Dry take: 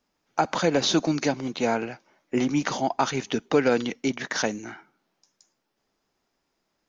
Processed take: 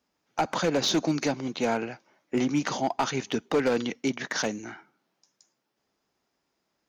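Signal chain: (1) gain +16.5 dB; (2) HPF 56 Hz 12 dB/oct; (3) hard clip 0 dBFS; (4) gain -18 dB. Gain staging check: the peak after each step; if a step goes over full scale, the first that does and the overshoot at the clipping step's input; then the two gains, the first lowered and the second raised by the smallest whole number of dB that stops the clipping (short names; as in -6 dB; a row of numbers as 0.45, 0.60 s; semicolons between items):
+8.0, +8.0, 0.0, -18.0 dBFS; step 1, 8.0 dB; step 1 +8.5 dB, step 4 -10 dB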